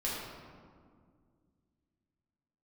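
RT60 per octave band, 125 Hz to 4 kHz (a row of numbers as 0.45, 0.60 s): 3.0, 2.9, 2.2, 1.9, 1.4, 1.0 s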